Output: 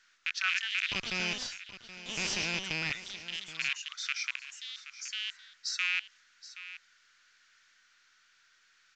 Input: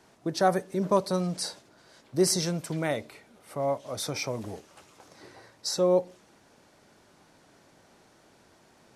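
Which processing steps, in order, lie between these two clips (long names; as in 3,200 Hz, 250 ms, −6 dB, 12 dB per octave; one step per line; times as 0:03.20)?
loose part that buzzes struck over −32 dBFS, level −16 dBFS
elliptic high-pass filter 1,400 Hz, stop band 60 dB
high-shelf EQ 5,200 Hz −6.5 dB
0:00.89–0:02.92: asymmetric clip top −40 dBFS
delay with pitch and tempo change per echo 261 ms, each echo +3 semitones, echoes 2, each echo −6 dB
single-tap delay 774 ms −14.5 dB
mu-law 128 kbit/s 16,000 Hz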